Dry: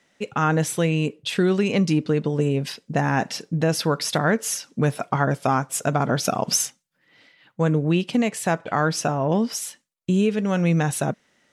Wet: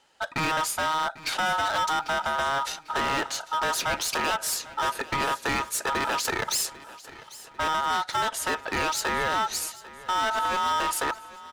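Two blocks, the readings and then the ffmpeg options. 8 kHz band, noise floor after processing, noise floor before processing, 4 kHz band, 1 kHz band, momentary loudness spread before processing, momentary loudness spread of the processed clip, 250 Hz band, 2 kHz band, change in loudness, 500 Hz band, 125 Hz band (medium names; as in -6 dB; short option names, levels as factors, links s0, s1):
-2.5 dB, -49 dBFS, -69 dBFS, +1.5 dB, +2.0 dB, 6 LU, 6 LU, -16.0 dB, +1.5 dB, -4.0 dB, -9.0 dB, -20.0 dB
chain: -af "aeval=exprs='val(0)*sin(2*PI*1100*n/s)':c=same,asoftclip=type=hard:threshold=0.0531,aecho=1:1:796|1592|2388|3184:0.119|0.0582|0.0285|0.014,volume=1.41"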